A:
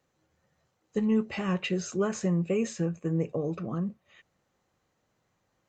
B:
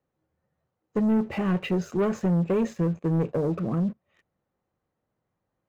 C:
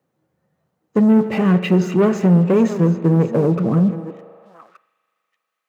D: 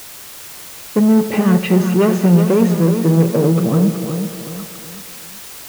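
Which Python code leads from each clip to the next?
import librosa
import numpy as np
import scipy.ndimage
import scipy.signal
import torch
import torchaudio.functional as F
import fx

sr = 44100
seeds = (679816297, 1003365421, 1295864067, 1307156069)

y1 = fx.lowpass(x, sr, hz=1000.0, slope=6)
y1 = fx.leveller(y1, sr, passes=2)
y2 = fx.reverse_delay(y1, sr, ms=596, wet_db=-13.5)
y2 = fx.rev_spring(y2, sr, rt60_s=3.2, pass_ms=(39,), chirp_ms=45, drr_db=12.5)
y2 = fx.filter_sweep_highpass(y2, sr, from_hz=150.0, to_hz=2200.0, start_s=3.86, end_s=4.91, q=1.2)
y2 = y2 * 10.0 ** (8.0 / 20.0)
y3 = fx.quant_dither(y2, sr, seeds[0], bits=6, dither='triangular')
y3 = fx.echo_feedback(y3, sr, ms=373, feedback_pct=39, wet_db=-8)
y3 = y3 * 10.0 ** (1.0 / 20.0)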